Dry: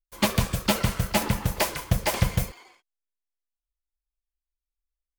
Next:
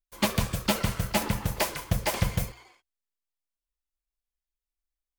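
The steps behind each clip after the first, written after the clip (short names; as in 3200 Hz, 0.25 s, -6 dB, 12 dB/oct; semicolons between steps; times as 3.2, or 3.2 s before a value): notches 60/120 Hz; gain -2.5 dB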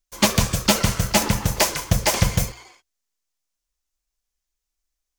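bell 6200 Hz +8 dB 0.79 oct; gain +7 dB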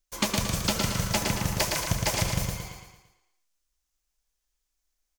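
compressor, threshold -24 dBFS, peak gain reduction 12 dB; on a send: feedback echo 0.113 s, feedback 47%, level -4 dB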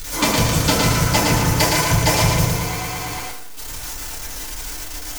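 zero-crossing step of -29 dBFS; FDN reverb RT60 0.49 s, low-frequency decay 1×, high-frequency decay 0.5×, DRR -5 dB; gain +2.5 dB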